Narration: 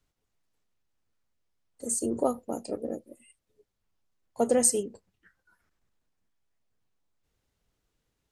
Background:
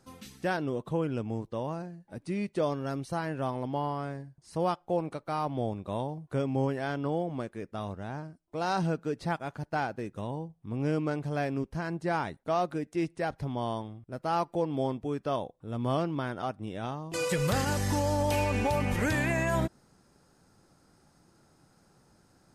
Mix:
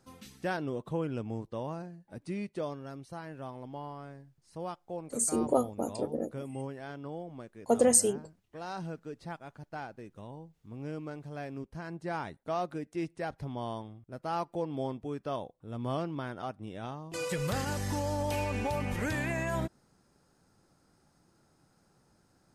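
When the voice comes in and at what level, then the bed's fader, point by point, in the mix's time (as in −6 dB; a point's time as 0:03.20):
3.30 s, 0.0 dB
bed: 0:02.28 −3 dB
0:02.91 −10 dB
0:11.29 −10 dB
0:12.38 −4.5 dB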